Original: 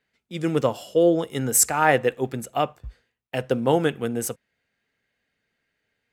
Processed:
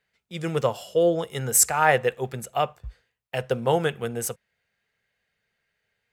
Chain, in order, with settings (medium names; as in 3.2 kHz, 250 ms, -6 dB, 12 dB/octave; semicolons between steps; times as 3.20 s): peaking EQ 280 Hz -15 dB 0.46 oct